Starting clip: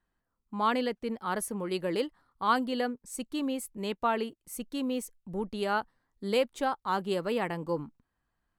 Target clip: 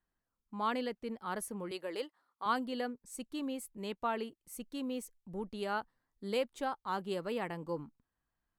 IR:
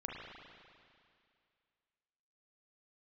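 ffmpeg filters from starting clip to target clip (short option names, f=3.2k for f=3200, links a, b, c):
-filter_complex "[0:a]asettb=1/sr,asplit=3[a][b][c];[a]atrim=end=1.714[d];[b]atrim=start=1.71:end=2.46,asetpts=PTS-STARTPTS,afade=t=in:d=0.004:c=qsin,afade=t=out:st=0.746:d=0.004:c=qsin,highpass=400[e];[c]atrim=start=2.456[f];[d][e]acrossfade=d=0.004:c1=hsin:c2=qsin[g];[g][f]acrossfade=d=0.004:c1=qsin:c2=hsin,volume=-6.5dB"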